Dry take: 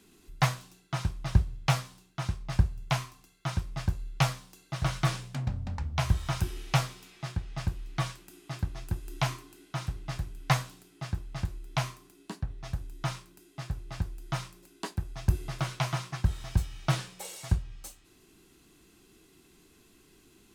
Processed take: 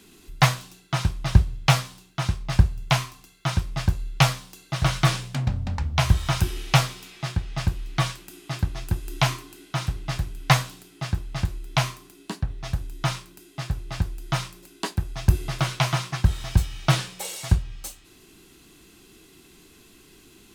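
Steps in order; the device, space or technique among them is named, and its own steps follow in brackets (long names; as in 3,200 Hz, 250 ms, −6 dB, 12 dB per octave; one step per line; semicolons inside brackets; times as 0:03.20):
presence and air boost (parametric band 3,300 Hz +3 dB 1.4 octaves; high-shelf EQ 12,000 Hz +3.5 dB)
level +7 dB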